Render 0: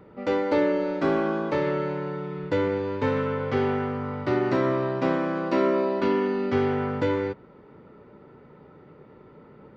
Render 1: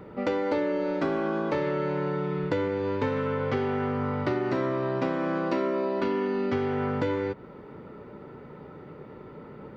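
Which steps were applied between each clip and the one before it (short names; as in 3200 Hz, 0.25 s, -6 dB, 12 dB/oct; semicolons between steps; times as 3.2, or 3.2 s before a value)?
compressor, threshold -30 dBFS, peak gain reduction 11 dB; gain +5.5 dB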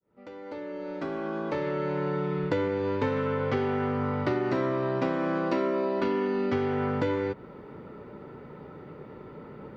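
opening faded in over 2.17 s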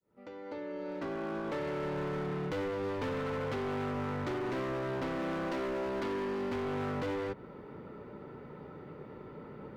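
overloaded stage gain 29.5 dB; gain -3 dB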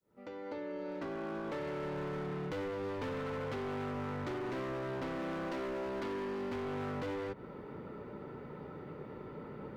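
compressor, threshold -38 dBFS, peak gain reduction 4.5 dB; gain +1 dB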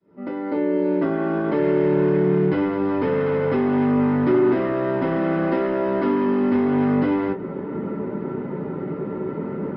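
downsampling 11025 Hz; reverb, pre-delay 3 ms, DRR -3 dB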